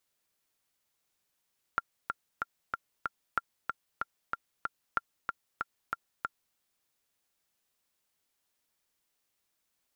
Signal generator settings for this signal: metronome 188 bpm, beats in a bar 5, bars 3, 1.38 kHz, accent 4.5 dB -14 dBFS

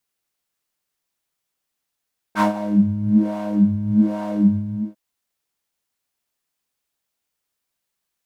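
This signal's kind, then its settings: synth patch with filter wobble G#3, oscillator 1 triangle, oscillator 2 square, interval +7 st, oscillator 2 level -16 dB, sub -17 dB, noise -12.5 dB, filter bandpass, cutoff 250 Hz, Q 3, filter envelope 2.5 oct, filter decay 0.13 s, filter sustain 0%, attack 58 ms, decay 0.12 s, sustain -14 dB, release 0.39 s, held 2.21 s, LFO 1.2 Hz, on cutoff 1.6 oct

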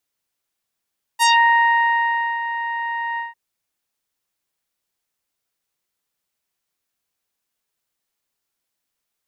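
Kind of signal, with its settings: synth note saw A#5 24 dB/octave, low-pass 2 kHz, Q 1.8, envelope 3 oct, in 0.19 s, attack 34 ms, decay 1.17 s, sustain -12 dB, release 0.16 s, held 1.99 s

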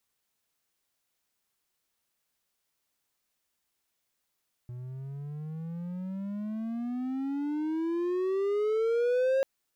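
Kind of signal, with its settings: gliding synth tone triangle, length 4.74 s, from 121 Hz, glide +26 st, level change +15 dB, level -20.5 dB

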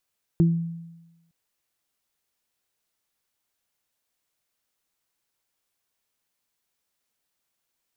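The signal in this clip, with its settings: additive tone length 0.91 s, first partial 167 Hz, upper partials -6 dB, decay 1.05 s, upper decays 0.28 s, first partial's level -13.5 dB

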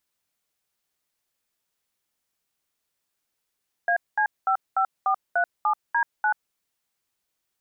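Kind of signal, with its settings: DTMF "AC55437D9", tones 85 ms, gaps 210 ms, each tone -21.5 dBFS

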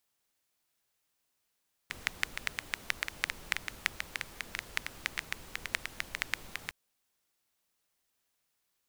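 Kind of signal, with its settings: rain from filtered ticks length 4.81 s, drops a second 7.8, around 2 kHz, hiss -10 dB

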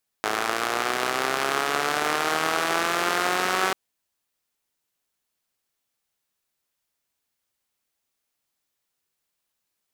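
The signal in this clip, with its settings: four-cylinder engine model, changing speed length 3.49 s, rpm 3200, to 5700, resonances 430/720/1200 Hz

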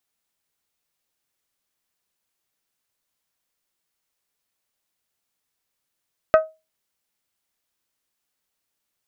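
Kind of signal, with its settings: glass hit bell, lowest mode 634 Hz, decay 0.25 s, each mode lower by 6.5 dB, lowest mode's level -7 dB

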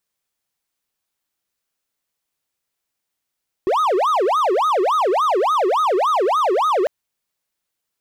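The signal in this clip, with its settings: siren wail 359–1270 Hz 3.5 per s triangle -12.5 dBFS 3.20 s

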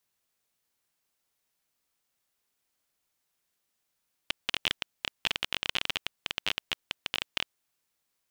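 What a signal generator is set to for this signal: random clicks 20 per s -10.5 dBFS 3.20 s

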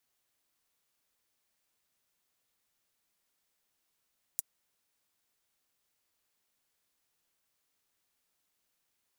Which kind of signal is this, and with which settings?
closed hi-hat, high-pass 7.8 kHz, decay 0.03 s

